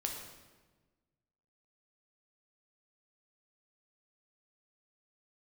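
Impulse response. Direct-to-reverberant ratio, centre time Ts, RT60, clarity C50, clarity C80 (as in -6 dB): 1.0 dB, 46 ms, 1.3 s, 4.0 dB, 6.0 dB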